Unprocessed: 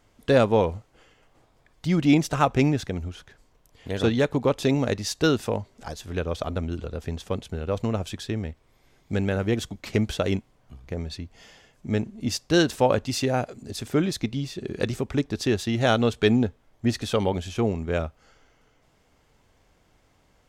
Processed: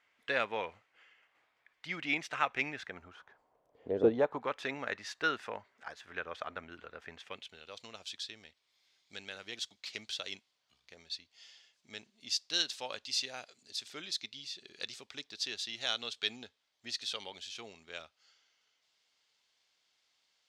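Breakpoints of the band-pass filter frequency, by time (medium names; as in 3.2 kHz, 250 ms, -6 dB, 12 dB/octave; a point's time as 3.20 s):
band-pass filter, Q 1.9
2.71 s 2.1 kHz
4.01 s 390 Hz
4.47 s 1.7 kHz
7.10 s 1.7 kHz
7.69 s 4.2 kHz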